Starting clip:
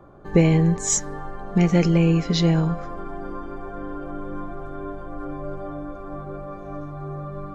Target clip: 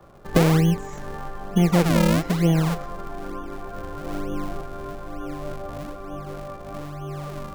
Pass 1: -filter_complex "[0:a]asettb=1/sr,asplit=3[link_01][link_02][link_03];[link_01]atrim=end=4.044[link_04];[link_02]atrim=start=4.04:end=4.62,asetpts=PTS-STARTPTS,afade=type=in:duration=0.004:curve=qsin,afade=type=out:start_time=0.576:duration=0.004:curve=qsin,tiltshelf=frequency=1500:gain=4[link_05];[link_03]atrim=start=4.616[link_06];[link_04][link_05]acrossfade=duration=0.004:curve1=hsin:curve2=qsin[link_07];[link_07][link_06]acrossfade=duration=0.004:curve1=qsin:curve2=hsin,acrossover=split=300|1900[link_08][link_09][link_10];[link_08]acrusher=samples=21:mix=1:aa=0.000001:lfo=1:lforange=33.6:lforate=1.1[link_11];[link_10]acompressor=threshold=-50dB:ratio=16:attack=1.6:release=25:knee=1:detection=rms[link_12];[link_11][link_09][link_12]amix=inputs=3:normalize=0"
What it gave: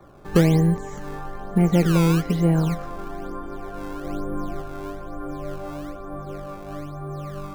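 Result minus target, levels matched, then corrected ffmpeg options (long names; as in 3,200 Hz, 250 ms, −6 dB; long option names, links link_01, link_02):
sample-and-hold swept by an LFO: distortion −11 dB
-filter_complex "[0:a]asettb=1/sr,asplit=3[link_01][link_02][link_03];[link_01]atrim=end=4.044[link_04];[link_02]atrim=start=4.04:end=4.62,asetpts=PTS-STARTPTS,afade=type=in:duration=0.004:curve=qsin,afade=type=out:start_time=0.576:duration=0.004:curve=qsin,tiltshelf=frequency=1500:gain=4[link_05];[link_03]atrim=start=4.616[link_06];[link_04][link_05]acrossfade=duration=0.004:curve1=hsin:curve2=qsin[link_07];[link_07][link_06]acrossfade=duration=0.004:curve1=qsin:curve2=hsin,acrossover=split=300|1900[link_08][link_09][link_10];[link_08]acrusher=samples=67:mix=1:aa=0.000001:lfo=1:lforange=107:lforate=1.1[link_11];[link_10]acompressor=threshold=-50dB:ratio=16:attack=1.6:release=25:knee=1:detection=rms[link_12];[link_11][link_09][link_12]amix=inputs=3:normalize=0"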